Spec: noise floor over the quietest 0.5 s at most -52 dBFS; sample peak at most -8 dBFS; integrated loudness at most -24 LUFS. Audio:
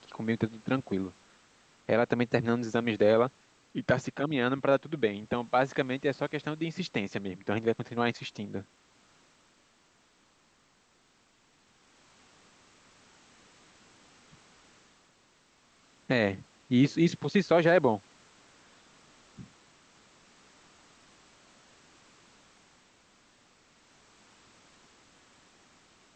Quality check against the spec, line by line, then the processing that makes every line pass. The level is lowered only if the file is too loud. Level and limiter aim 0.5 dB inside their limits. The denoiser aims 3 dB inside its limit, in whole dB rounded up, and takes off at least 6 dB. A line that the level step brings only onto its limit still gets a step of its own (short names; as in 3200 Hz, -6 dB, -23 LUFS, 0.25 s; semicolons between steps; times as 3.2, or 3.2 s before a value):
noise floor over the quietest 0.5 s -66 dBFS: OK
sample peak -9.5 dBFS: OK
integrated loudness -29.0 LUFS: OK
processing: none